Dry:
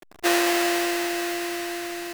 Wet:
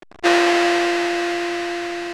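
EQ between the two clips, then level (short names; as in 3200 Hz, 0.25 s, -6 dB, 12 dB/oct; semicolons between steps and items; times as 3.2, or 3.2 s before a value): air absorption 70 m; high shelf 8200 Hz -7.5 dB; +6.5 dB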